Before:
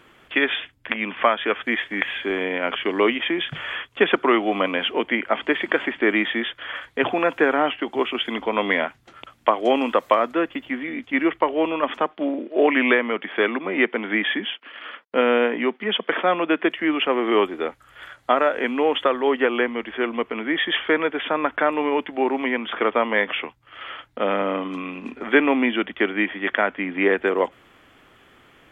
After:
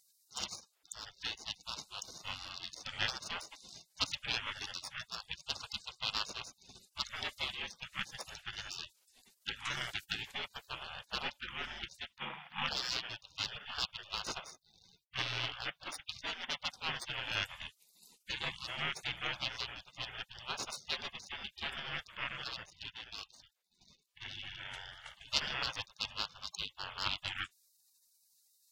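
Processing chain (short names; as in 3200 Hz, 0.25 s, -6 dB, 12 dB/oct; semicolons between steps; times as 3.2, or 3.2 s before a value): tracing distortion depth 0.058 ms; 22.63–24.32 level quantiser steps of 12 dB; spectral gate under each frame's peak -30 dB weak; gain +4.5 dB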